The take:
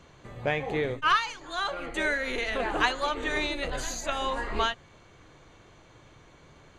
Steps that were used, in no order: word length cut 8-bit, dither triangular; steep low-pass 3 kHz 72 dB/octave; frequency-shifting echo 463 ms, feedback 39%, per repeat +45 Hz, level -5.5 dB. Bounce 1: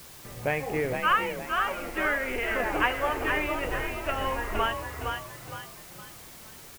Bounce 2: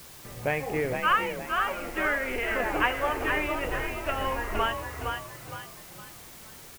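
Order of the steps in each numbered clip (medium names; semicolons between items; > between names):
steep low-pass > frequency-shifting echo > word length cut; frequency-shifting echo > steep low-pass > word length cut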